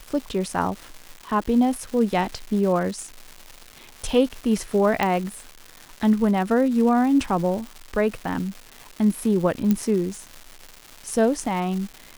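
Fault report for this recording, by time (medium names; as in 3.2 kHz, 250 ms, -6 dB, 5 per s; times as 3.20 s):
crackle 410 per s -31 dBFS
5.03 s: pop -8 dBFS
9.71 s: pop -9 dBFS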